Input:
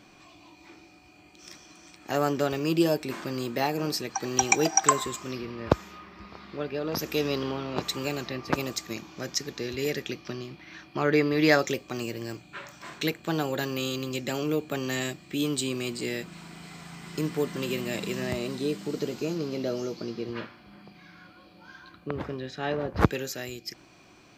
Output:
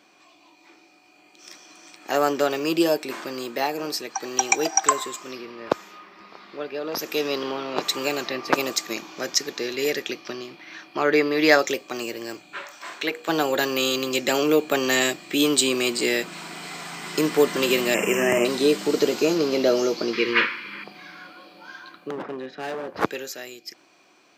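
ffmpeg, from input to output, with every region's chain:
ffmpeg -i in.wav -filter_complex "[0:a]asettb=1/sr,asplit=3[link_01][link_02][link_03];[link_01]atrim=end=12.634[link_04];[link_02]atrim=start=12.63:end=13.29,asetpts=PTS-STARTPTS,afade=type=in:duration=0.004:curve=qsin,afade=type=out:start_time=0.656:duration=0.004:curve=qsin,acrossover=split=3300[link_05][link_06];[link_06]acompressor=threshold=-44dB:ratio=4:attack=1:release=60[link_07];[link_05][link_07]amix=inputs=2:normalize=0,highpass=frequency=370:poles=1,bandreject=frequency=60:width_type=h:width=6,bandreject=frequency=120:width_type=h:width=6,bandreject=frequency=180:width_type=h:width=6,bandreject=frequency=240:width_type=h:width=6,bandreject=frequency=300:width_type=h:width=6,bandreject=frequency=360:width_type=h:width=6,bandreject=frequency=420:width_type=h:width=6,bandreject=frequency=480:width_type=h:width=6,bandreject=frequency=540:width_type=h:width=6[link_08];[link_03]atrim=start=13.286[link_09];[link_04][link_08]acrossfade=duration=0.004:curve1=hsin:curve2=qsin[link_10];[link_10][link_09]acrossfade=duration=0.004:curve1=qsin:curve2=hsin,asettb=1/sr,asplit=3[link_11][link_12][link_13];[link_11]atrim=end=17.944[link_14];[link_12]atrim=start=17.94:end=18.45,asetpts=PTS-STARTPTS,afade=type=in:duration=0.004:curve=qsin,afade=type=out:start_time=0.506:duration=0.004:curve=qsin,asuperstop=centerf=4100:order=8:qfactor=1.6,asplit=2[link_15][link_16];[link_16]adelay=50,volume=-7dB[link_17];[link_15][link_17]amix=inputs=2:normalize=0,atrim=end_sample=22491[link_18];[link_13]atrim=start=18.446[link_19];[link_14][link_18]acrossfade=duration=0.004:curve1=hsin:curve2=qsin[link_20];[link_20][link_19]acrossfade=duration=0.004:curve1=qsin:curve2=hsin,asettb=1/sr,asplit=3[link_21][link_22][link_23];[link_21]atrim=end=20.134[link_24];[link_22]atrim=start=20.13:end=20.84,asetpts=PTS-STARTPTS,afade=type=in:duration=0.004:curve=qsin,afade=type=out:start_time=0.706:duration=0.004:curve=qsin,asuperstop=centerf=700:order=8:qfactor=2.1,equalizer=frequency=2200:width_type=o:width=1.2:gain=14.5[link_25];[link_23]atrim=start=20.836[link_26];[link_24][link_25]acrossfade=duration=0.004:curve1=hsin:curve2=qsin[link_27];[link_27][link_26]acrossfade=duration=0.004:curve1=qsin:curve2=hsin,asettb=1/sr,asplit=3[link_28][link_29][link_30];[link_28]atrim=end=22.104[link_31];[link_29]atrim=start=22.1:end=22.88,asetpts=PTS-STARTPTS,afade=type=in:duration=0.004:curve=qsin,afade=type=out:start_time=0.776:duration=0.004:curve=qsin,adynamicsmooth=sensitivity=2.5:basefreq=2600,highpass=frequency=170:width_type=q:width=1.6,asoftclip=type=hard:threshold=-29.5dB[link_32];[link_30]atrim=start=22.876[link_33];[link_31][link_32]acrossfade=duration=0.004:curve1=hsin:curve2=qsin[link_34];[link_34][link_33]acrossfade=duration=0.004:curve1=qsin:curve2=hsin,highpass=340,dynaudnorm=framelen=180:gausssize=21:maxgain=14dB,volume=-1dB" out.wav

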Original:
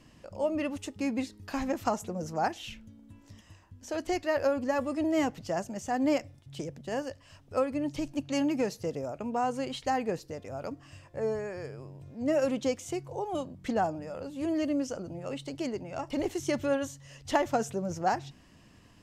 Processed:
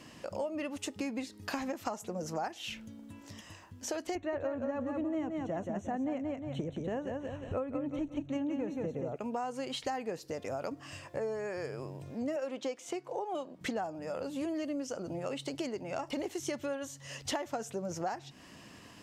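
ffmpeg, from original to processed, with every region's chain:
ffmpeg -i in.wav -filter_complex "[0:a]asettb=1/sr,asplit=3[link_01][link_02][link_03];[link_01]atrim=end=4.154[link_04];[link_02]atrim=start=4.15:end=9.16,asetpts=PTS-STARTPTS,afade=type=in:duration=0.004:curve=qsin,afade=type=out:start_time=5.006:duration=0.004:curve=qsin,asuperstop=centerf=4900:order=8:qfactor=3.5,aemphasis=mode=reproduction:type=riaa,aecho=1:1:177|354|531|708:0.531|0.143|0.0387|0.0104,atrim=end_sample=220941[link_05];[link_03]atrim=start=9.156[link_06];[link_04][link_05]acrossfade=duration=0.004:curve1=hsin:curve2=qsin[link_07];[link_07][link_06]acrossfade=duration=0.004:curve1=qsin:curve2=hsin,asettb=1/sr,asplit=3[link_08][link_09][link_10];[link_08]atrim=end=12.364[link_11];[link_09]atrim=start=12.36:end=13.61,asetpts=PTS-STARTPTS,afade=type=in:duration=0.004:curve=qsin,afade=type=out:start_time=1.246:duration=0.004:curve=qsin,highpass=300,highshelf=frequency=5800:gain=-11[link_12];[link_10]atrim=start=13.606[link_13];[link_11][link_12]acrossfade=duration=0.004:curve1=hsin:curve2=qsin[link_14];[link_14][link_13]acrossfade=duration=0.004:curve1=qsin:curve2=hsin,highpass=frequency=260:poles=1,acompressor=threshold=-42dB:ratio=6,volume=8dB" out.wav

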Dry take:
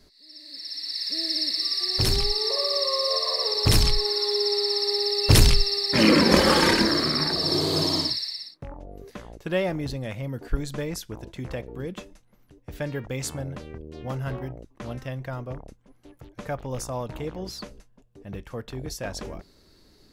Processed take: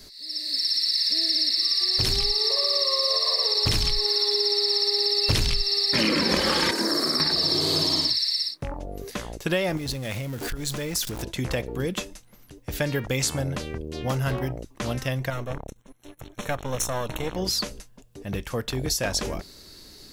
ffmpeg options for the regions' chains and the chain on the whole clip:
ffmpeg -i in.wav -filter_complex "[0:a]asettb=1/sr,asplit=3[link_01][link_02][link_03];[link_01]atrim=end=6.714[link_04];[link_02]atrim=start=6.71:end=7.2,asetpts=PTS-STARTPTS,afade=type=in:duration=0.004:curve=qsin,afade=type=out:start_time=0.486:duration=0.004:curve=qsin,highpass=270,equalizer=frequency=2900:width_type=o:width=1.6:gain=-13.5[link_05];[link_03]atrim=start=7.196[link_06];[link_04][link_05]acrossfade=duration=0.004:curve1=hsin:curve2=qsin[link_07];[link_07][link_06]acrossfade=duration=0.004:curve1=qsin:curve2=hsin,asettb=1/sr,asplit=3[link_08][link_09][link_10];[link_08]atrim=end=9.774[link_11];[link_09]atrim=start=9.77:end=11.23,asetpts=PTS-STARTPTS,afade=type=in:duration=0.004:curve=qsin,afade=type=out:start_time=1.456:duration=0.004:curve=qsin,aeval=exprs='val(0)+0.5*0.01*sgn(val(0))':channel_layout=same,acompressor=threshold=-34dB:ratio=6:attack=3.2:release=140:knee=1:detection=peak[link_12];[link_10]atrim=start=11.226[link_13];[link_11][link_12]acrossfade=duration=0.004:curve1=hsin:curve2=qsin[link_14];[link_14][link_13]acrossfade=duration=0.004:curve1=qsin:curve2=hsin,asettb=1/sr,asplit=3[link_15][link_16][link_17];[link_15]atrim=end=15.304[link_18];[link_16]atrim=start=15.3:end=17.36,asetpts=PTS-STARTPTS,afade=type=in:duration=0.004:curve=qsin,afade=type=out:start_time=2.056:duration=0.004:curve=qsin,aeval=exprs='if(lt(val(0),0),0.251*val(0),val(0))':channel_layout=same,asuperstop=centerf=4800:order=20:qfactor=5.4[link_19];[link_17]atrim=start=17.356[link_20];[link_18][link_19]acrossfade=duration=0.004:curve1=hsin:curve2=qsin[link_21];[link_21][link_20]acrossfade=duration=0.004:curve1=qsin:curve2=hsin,acrossover=split=5300[link_22][link_23];[link_23]acompressor=threshold=-38dB:ratio=4:attack=1:release=60[link_24];[link_22][link_24]amix=inputs=2:normalize=0,highshelf=frequency=2700:gain=11,acompressor=threshold=-27dB:ratio=5,volume=6dB" out.wav

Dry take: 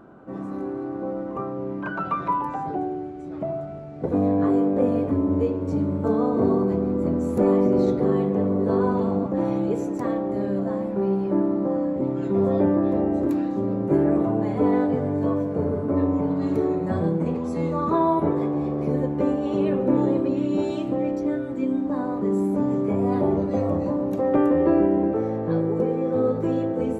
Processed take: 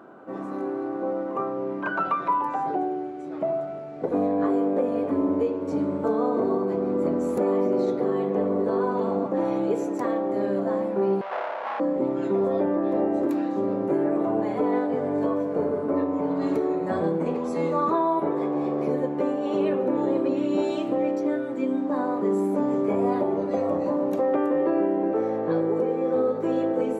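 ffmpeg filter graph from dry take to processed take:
ffmpeg -i in.wav -filter_complex "[0:a]asettb=1/sr,asplit=3[link_01][link_02][link_03];[link_01]atrim=end=11.214[link_04];[link_02]atrim=start=11.21:end=11.8,asetpts=PTS-STARTPTS,afade=type=in:duration=0.004:curve=qsin,afade=type=out:start_time=0.586:duration=0.004:curve=qsin,aeval=exprs='abs(val(0))':channel_layout=same,highpass=780,lowpass=3200[link_05];[link_03]atrim=start=11.796[link_06];[link_04][link_05]acrossfade=duration=0.004:curve1=hsin:curve2=qsin[link_07];[link_07][link_06]acrossfade=duration=0.004:curve1=qsin:curve2=hsin,highpass=130,bass=frequency=250:gain=-11,treble=frequency=4000:gain=-2,alimiter=limit=-18dB:level=0:latency=1:release=393,volume=3.5dB" out.wav

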